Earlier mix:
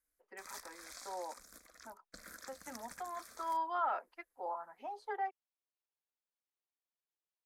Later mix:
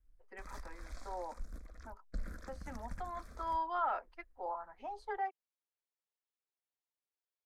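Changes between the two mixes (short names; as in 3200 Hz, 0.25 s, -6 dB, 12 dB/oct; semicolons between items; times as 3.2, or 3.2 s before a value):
background: add tilt -4 dB/oct; master: add low shelf 90 Hz +12 dB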